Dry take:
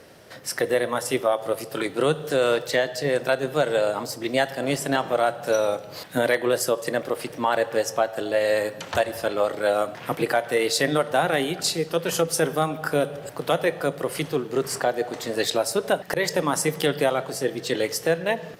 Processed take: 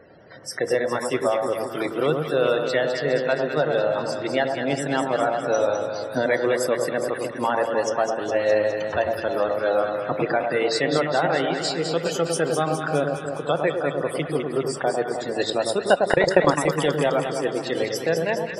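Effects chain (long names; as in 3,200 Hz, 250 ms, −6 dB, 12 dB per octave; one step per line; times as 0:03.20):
spectral peaks only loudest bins 64
0:15.87–0:16.65: transient designer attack +11 dB, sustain −9 dB
delay that swaps between a low-pass and a high-pass 103 ms, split 1,200 Hz, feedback 79%, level −4 dB
level −1 dB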